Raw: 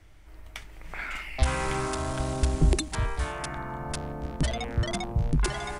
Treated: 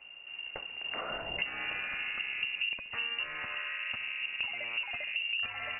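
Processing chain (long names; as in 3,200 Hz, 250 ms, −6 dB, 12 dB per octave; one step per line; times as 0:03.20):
downward compressor 6 to 1, threshold −34 dBFS, peak gain reduction 17 dB
on a send: feedback echo with a high-pass in the loop 69 ms, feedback 65%, level −16.5 dB
on the sum: voice inversion scrambler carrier 2,800 Hz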